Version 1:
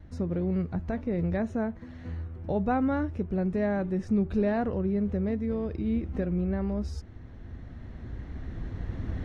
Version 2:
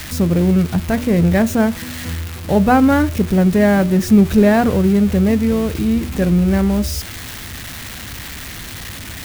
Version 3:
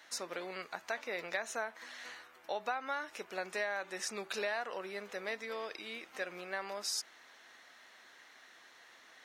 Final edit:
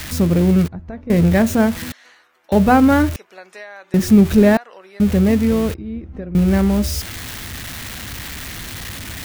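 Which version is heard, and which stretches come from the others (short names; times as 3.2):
2
0.68–1.1 from 1
1.92–2.52 from 3
3.16–3.94 from 3
4.57–5 from 3
5.74–6.35 from 1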